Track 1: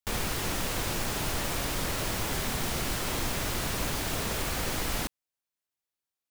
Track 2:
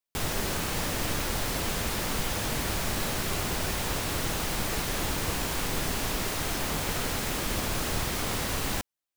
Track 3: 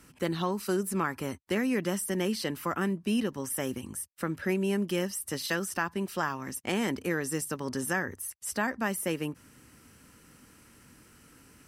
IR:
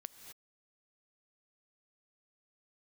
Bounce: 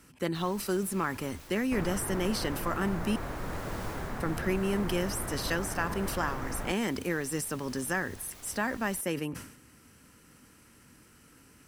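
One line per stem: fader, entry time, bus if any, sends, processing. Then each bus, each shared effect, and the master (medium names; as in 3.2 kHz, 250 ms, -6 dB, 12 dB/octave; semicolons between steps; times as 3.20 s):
-3.5 dB, 1.65 s, no send, low-pass 1.8 kHz 24 dB/octave
-14.0 dB, 0.20 s, no send, auto duck -7 dB, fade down 0.35 s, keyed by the third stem
-2.0 dB, 0.00 s, muted 3.16–4.20 s, send -16.5 dB, decay stretcher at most 81 dB/s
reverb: on, pre-delay 3 ms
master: none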